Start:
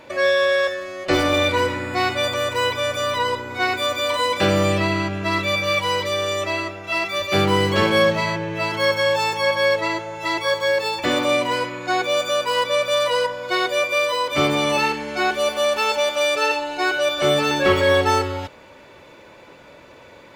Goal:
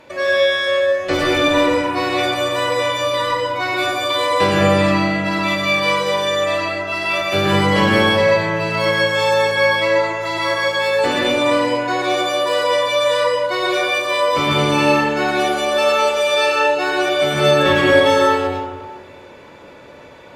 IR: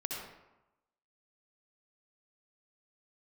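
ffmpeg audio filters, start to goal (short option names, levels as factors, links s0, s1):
-filter_complex "[1:a]atrim=start_sample=2205,asetrate=27342,aresample=44100[s0];[0:a][s0]afir=irnorm=-1:irlink=0,volume=0.841"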